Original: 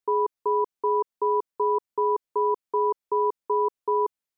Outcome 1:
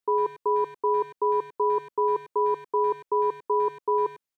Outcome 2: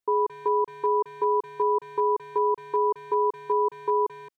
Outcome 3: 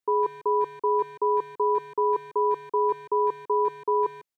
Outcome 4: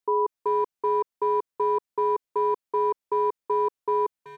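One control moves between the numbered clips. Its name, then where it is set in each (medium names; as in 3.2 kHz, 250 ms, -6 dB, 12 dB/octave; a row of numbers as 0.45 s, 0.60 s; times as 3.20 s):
speakerphone echo, time: 100 ms, 220 ms, 150 ms, 380 ms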